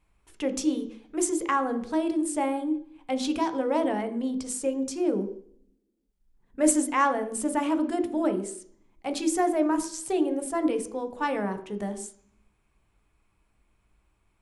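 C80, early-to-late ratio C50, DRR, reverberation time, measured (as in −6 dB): 14.0 dB, 11.5 dB, 6.5 dB, 0.55 s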